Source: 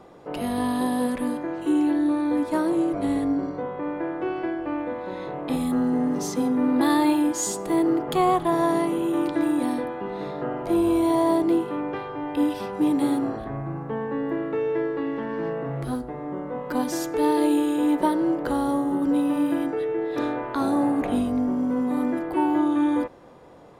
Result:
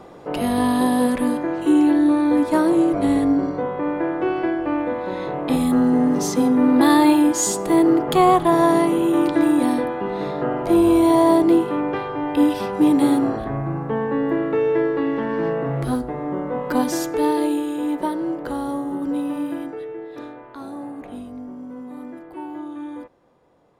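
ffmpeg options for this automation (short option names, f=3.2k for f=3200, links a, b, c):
-af "volume=6dB,afade=t=out:st=16.68:d=0.94:silence=0.398107,afade=t=out:st=19.26:d=1.1:silence=0.354813"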